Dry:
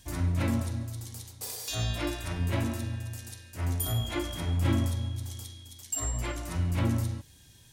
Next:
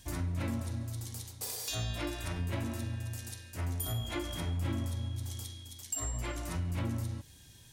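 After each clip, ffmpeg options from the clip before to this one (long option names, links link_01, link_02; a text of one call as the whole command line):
ffmpeg -i in.wav -af "acompressor=threshold=-34dB:ratio=2.5" out.wav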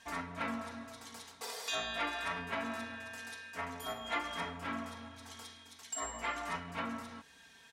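ffmpeg -i in.wav -af "bandpass=frequency=1300:width_type=q:width=0.97:csg=0,aecho=1:1:4.4:0.81,volume=6.5dB" out.wav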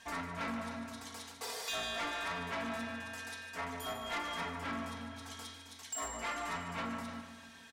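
ffmpeg -i in.wav -af "aecho=1:1:149|298|447|596|745|894:0.251|0.141|0.0788|0.0441|0.0247|0.0138,asoftclip=type=tanh:threshold=-35.5dB,volume=2.5dB" out.wav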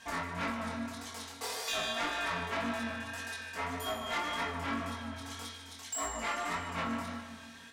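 ffmpeg -i in.wav -af "flanger=delay=20:depth=5.5:speed=1.8,volume=6.5dB" out.wav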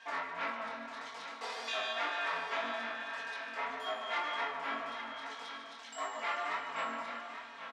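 ffmpeg -i in.wav -filter_complex "[0:a]highpass=510,lowpass=3500,asplit=2[link_01][link_02];[link_02]aecho=0:1:836:0.316[link_03];[link_01][link_03]amix=inputs=2:normalize=0" out.wav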